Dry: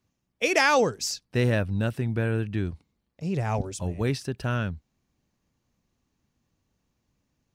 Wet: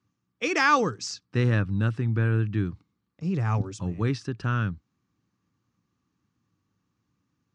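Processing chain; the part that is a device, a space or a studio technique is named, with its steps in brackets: car door speaker (speaker cabinet 81–7200 Hz, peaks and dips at 110 Hz +9 dB, 180 Hz +6 dB, 300 Hz +7 dB, 630 Hz -8 dB, 1200 Hz +10 dB, 1600 Hz +3 dB); gain -3.5 dB

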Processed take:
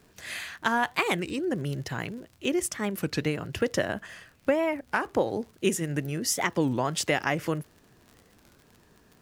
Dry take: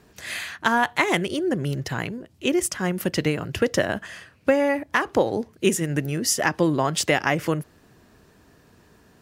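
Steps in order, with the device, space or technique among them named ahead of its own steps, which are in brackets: 3.91–5.22 dynamic EQ 4800 Hz, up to -4 dB, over -42 dBFS, Q 0.79; warped LP (record warp 33 1/3 rpm, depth 250 cents; crackle 60/s -36 dBFS; pink noise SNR 40 dB); gain -5 dB

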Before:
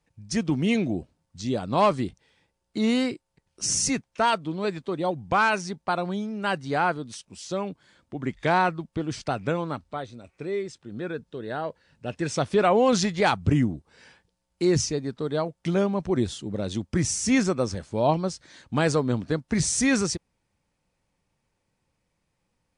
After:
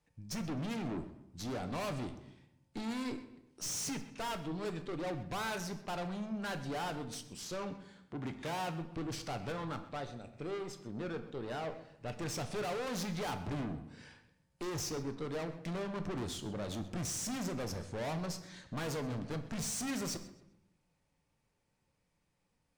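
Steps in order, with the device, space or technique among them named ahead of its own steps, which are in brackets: rockabilly slapback (tube stage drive 35 dB, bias 0.55; tape echo 0.128 s, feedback 35%, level -15 dB, low-pass 5300 Hz); 7.65–8.81 HPF 46 Hz; shoebox room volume 170 m³, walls mixed, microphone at 0.37 m; gain -2 dB

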